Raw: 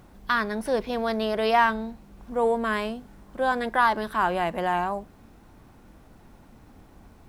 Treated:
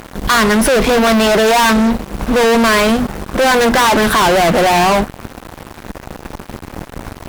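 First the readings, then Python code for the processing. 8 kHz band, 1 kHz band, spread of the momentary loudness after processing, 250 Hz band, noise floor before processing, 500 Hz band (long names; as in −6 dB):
can't be measured, +11.0 dB, 20 LU, +17.5 dB, −53 dBFS, +14.0 dB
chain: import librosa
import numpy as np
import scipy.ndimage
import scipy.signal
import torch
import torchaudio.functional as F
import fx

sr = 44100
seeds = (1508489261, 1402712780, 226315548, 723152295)

y = fx.hum_notches(x, sr, base_hz=60, count=5)
y = fx.fuzz(y, sr, gain_db=41.0, gate_db=-49.0)
y = F.gain(torch.from_numpy(y), 3.5).numpy()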